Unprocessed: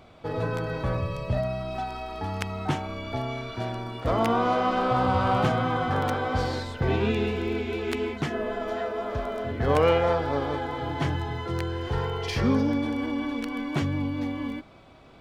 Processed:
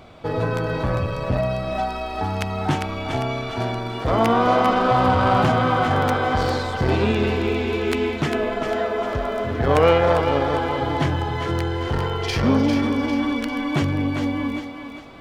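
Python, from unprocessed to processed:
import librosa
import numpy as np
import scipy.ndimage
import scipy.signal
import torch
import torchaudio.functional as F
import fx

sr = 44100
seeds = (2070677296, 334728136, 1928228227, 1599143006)

y = fx.echo_thinned(x, sr, ms=400, feedback_pct=42, hz=420.0, wet_db=-6.5)
y = fx.transformer_sat(y, sr, knee_hz=510.0)
y = F.gain(torch.from_numpy(y), 6.5).numpy()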